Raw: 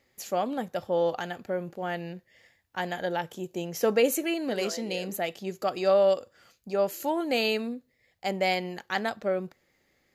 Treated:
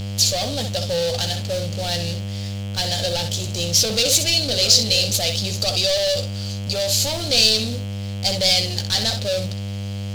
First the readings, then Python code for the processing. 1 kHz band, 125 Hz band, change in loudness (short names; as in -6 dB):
-1.0 dB, +18.5 dB, +9.5 dB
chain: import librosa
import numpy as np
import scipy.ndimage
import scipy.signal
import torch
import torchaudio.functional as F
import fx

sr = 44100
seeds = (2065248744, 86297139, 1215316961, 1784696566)

y = fx.cvsd(x, sr, bps=64000)
y = fx.low_shelf(y, sr, hz=270.0, db=-10.0)
y = fx.room_early_taps(y, sr, ms=(14, 64), db=(-10.0, -11.0))
y = fx.dmg_buzz(y, sr, base_hz=100.0, harmonics=33, level_db=-43.0, tilt_db=-6, odd_only=False)
y = fx.leveller(y, sr, passes=5)
y = fx.curve_eq(y, sr, hz=(150.0, 370.0, 530.0, 1000.0, 1900.0, 4300.0, 10000.0), db=(0, -17, -5, -18, -13, 12, -2))